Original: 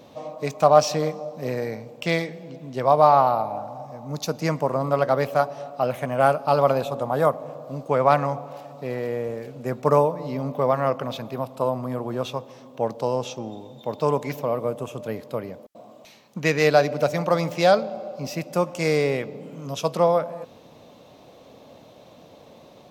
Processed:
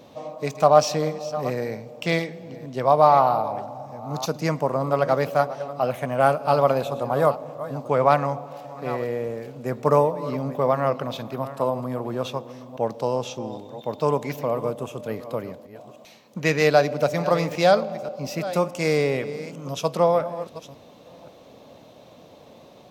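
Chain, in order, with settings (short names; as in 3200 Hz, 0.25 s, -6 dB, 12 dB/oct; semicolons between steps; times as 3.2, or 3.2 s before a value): reverse delay 0.532 s, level -14 dB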